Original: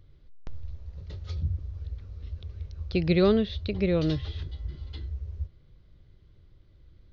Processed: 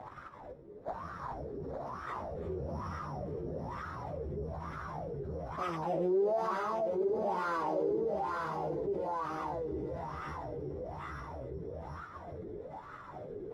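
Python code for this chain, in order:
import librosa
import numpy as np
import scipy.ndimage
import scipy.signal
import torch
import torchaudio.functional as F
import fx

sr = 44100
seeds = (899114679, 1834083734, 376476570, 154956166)

p1 = fx.lower_of_two(x, sr, delay_ms=0.48)
p2 = fx.curve_eq(p1, sr, hz=(520.0, 810.0, 1700.0, 2900.0, 5500.0), db=(0, 3, 5, -4, -28))
p3 = np.repeat(p2[::8], 8)[:len(p2)]
p4 = np.maximum(p3, 0.0)
p5 = p4 + fx.echo_multitap(p4, sr, ms=(186, 452, 483, 854), db=(-11.0, -9.0, -17.0, -10.0), dry=0)
p6 = fx.dynamic_eq(p5, sr, hz=1600.0, q=1.2, threshold_db=-51.0, ratio=4.0, max_db=-5)
p7 = fx.echo_feedback(p6, sr, ms=213, feedback_pct=43, wet_db=-10.5)
p8 = fx.stretch_vocoder_free(p7, sr, factor=1.9)
p9 = fx.wah_lfo(p8, sr, hz=1.1, low_hz=390.0, high_hz=1300.0, q=7.8)
p10 = fx.env_flatten(p9, sr, amount_pct=70)
y = p10 * librosa.db_to_amplitude(3.0)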